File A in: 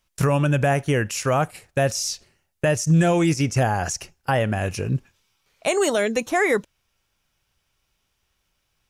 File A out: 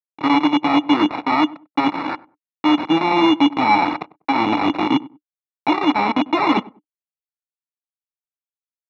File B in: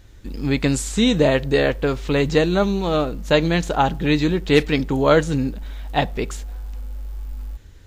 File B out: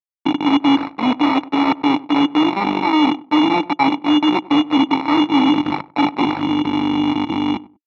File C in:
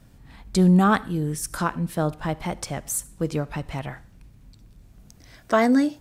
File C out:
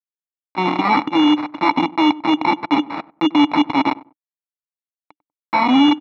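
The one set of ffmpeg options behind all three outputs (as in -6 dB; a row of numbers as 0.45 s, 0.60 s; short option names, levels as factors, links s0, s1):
-filter_complex "[0:a]aecho=1:1:3.3:0.74,areverse,acompressor=threshold=0.0398:ratio=20,areverse,acrusher=bits=4:mix=0:aa=0.000001,aeval=exprs='0.133*(cos(1*acos(clip(val(0)/0.133,-1,1)))-cos(1*PI/2))+0.0168*(cos(4*acos(clip(val(0)/0.133,-1,1)))-cos(4*PI/2))+0.0075*(cos(8*acos(clip(val(0)/0.133,-1,1)))-cos(8*PI/2))':c=same,asplit=3[s0][s1][s2];[s0]bandpass=f=300:t=q:w=8,volume=1[s3];[s1]bandpass=f=870:t=q:w=8,volume=0.501[s4];[s2]bandpass=f=2240:t=q:w=8,volume=0.355[s5];[s3][s4][s5]amix=inputs=3:normalize=0,acrusher=samples=14:mix=1:aa=0.000001,apsyclip=50.1,highpass=150,equalizer=f=230:t=q:w=4:g=-4,equalizer=f=380:t=q:w=4:g=-7,equalizer=f=1300:t=q:w=4:g=8,lowpass=f=3500:w=0.5412,lowpass=f=3500:w=1.3066,asplit=2[s6][s7];[s7]adelay=97,lowpass=f=910:p=1,volume=0.119,asplit=2[s8][s9];[s9]adelay=97,lowpass=f=910:p=1,volume=0.24[s10];[s8][s10]amix=inputs=2:normalize=0[s11];[s6][s11]amix=inputs=2:normalize=0,volume=0.473"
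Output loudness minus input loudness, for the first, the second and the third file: +3.5 LU, +3.0 LU, +6.5 LU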